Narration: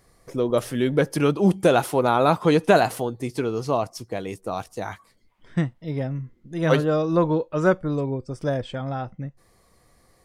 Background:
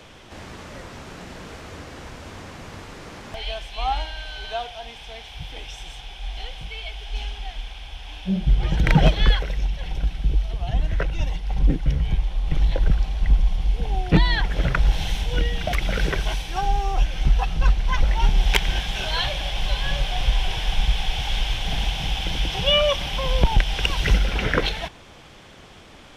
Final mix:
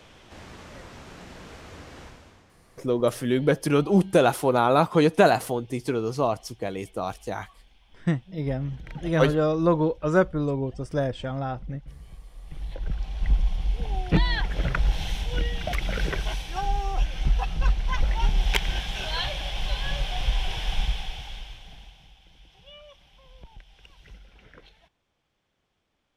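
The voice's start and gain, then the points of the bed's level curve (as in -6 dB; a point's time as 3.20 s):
2.50 s, -1.0 dB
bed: 2.03 s -5.5 dB
2.58 s -23 dB
12.20 s -23 dB
13.27 s -4.5 dB
20.81 s -4.5 dB
22.19 s -30 dB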